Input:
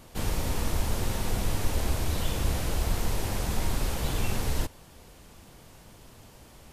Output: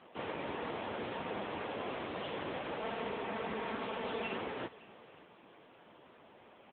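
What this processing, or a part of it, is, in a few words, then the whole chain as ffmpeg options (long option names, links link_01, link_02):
satellite phone: -filter_complex "[0:a]asettb=1/sr,asplit=3[link_01][link_02][link_03];[link_01]atrim=end=2.794[link_04];[link_02]atrim=start=2.79:end=4.36,asetpts=PTS-STARTPTS,afade=type=in:duration=0.004:curve=qsin,afade=type=out:start_time=1.566:duration=0.004:curve=qsin,aecho=1:1:4.5:0.55,atrim=end_sample=69237[link_05];[link_03]atrim=start=4.356[link_06];[link_04][link_05]acrossfade=duration=0.004:curve1=hsin:curve2=qsin[link_07];[link_07][link_06]acrossfade=duration=0.004:curve1=qsin:curve2=hsin,highpass=310,lowpass=3200,aecho=1:1:569:0.106,volume=1dB" -ar 8000 -c:a libopencore_amrnb -b:a 6700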